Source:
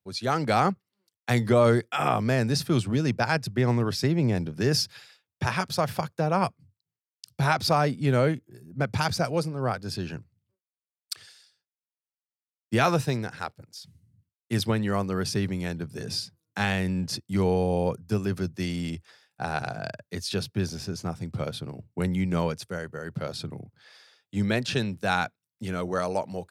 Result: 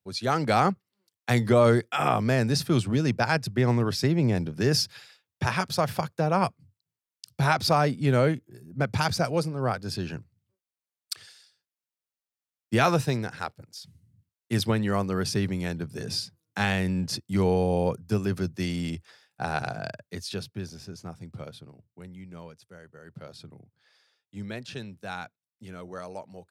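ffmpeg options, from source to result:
-af "volume=2.24,afade=t=out:st=19.69:d=0.92:silence=0.375837,afade=t=out:st=21.32:d=0.67:silence=0.334965,afade=t=in:st=22.59:d=0.59:silence=0.473151"

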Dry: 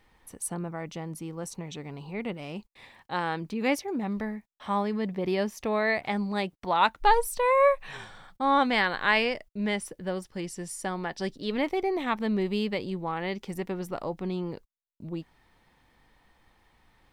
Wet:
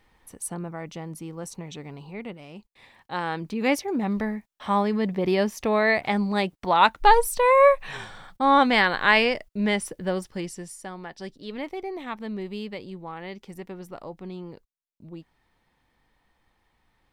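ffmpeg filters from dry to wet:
-af "volume=3.76,afade=t=out:st=1.86:d=0.63:silence=0.473151,afade=t=in:st=2.49:d=1.58:silence=0.281838,afade=t=out:st=10.24:d=0.55:silence=0.298538"

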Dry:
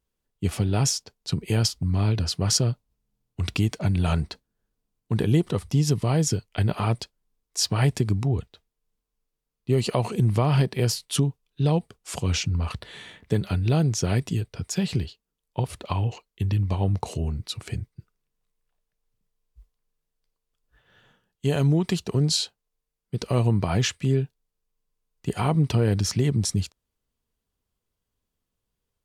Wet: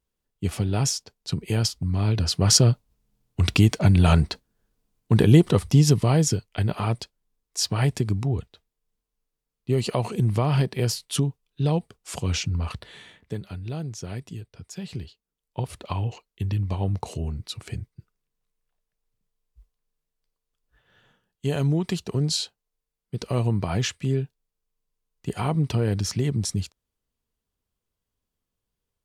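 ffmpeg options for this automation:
-af "volume=5.31,afade=t=in:st=2.01:d=0.67:silence=0.446684,afade=t=out:st=5.62:d=0.89:silence=0.446684,afade=t=out:st=12.68:d=0.77:silence=0.334965,afade=t=in:st=14.79:d=0.93:silence=0.375837"

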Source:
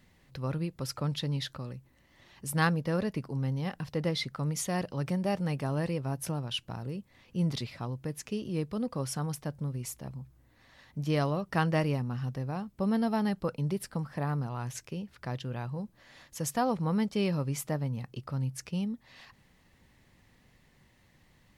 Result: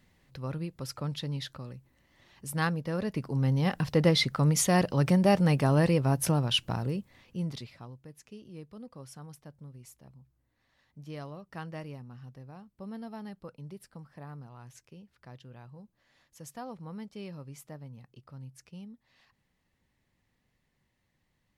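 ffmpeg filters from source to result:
-af "volume=2.37,afade=t=in:st=2.96:d=0.81:silence=0.316228,afade=t=out:st=6.71:d=0.71:silence=0.251189,afade=t=out:st=7.42:d=0.62:silence=0.375837"

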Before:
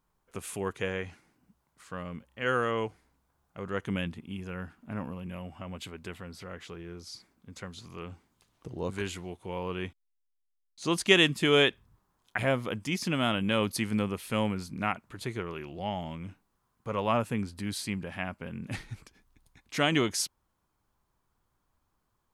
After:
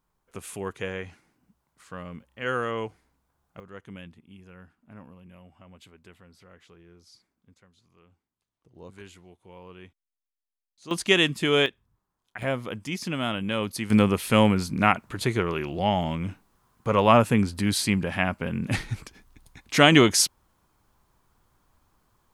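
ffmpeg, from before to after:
-af "asetnsamples=n=441:p=0,asendcmd='3.6 volume volume -10.5dB;7.54 volume volume -18.5dB;8.75 volume volume -11.5dB;10.91 volume volume 1dB;11.66 volume volume -7.5dB;12.42 volume volume -0.5dB;13.9 volume volume 10dB',volume=1"

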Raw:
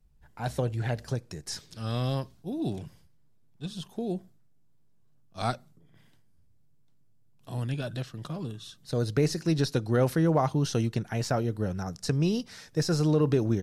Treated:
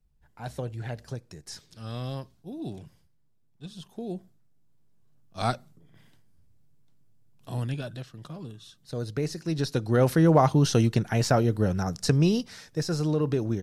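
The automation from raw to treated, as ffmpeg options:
-af "volume=4.22,afade=t=in:st=3.77:d=1.65:silence=0.421697,afade=t=out:st=7.53:d=0.45:silence=0.446684,afade=t=in:st=9.44:d=0.96:silence=0.316228,afade=t=out:st=12.04:d=0.77:silence=0.421697"

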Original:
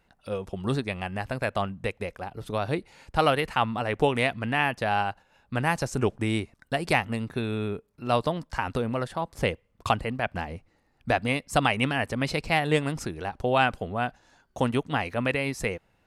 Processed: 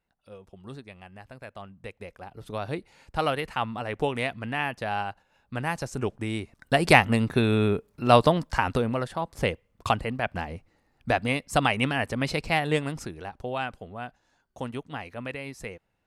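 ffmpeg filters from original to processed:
-af "volume=2.24,afade=t=in:st=1.61:d=0.98:silence=0.298538,afade=t=in:st=6.39:d=0.45:silence=0.281838,afade=t=out:st=8.25:d=0.77:silence=0.446684,afade=t=out:st=12.43:d=1.18:silence=0.354813"

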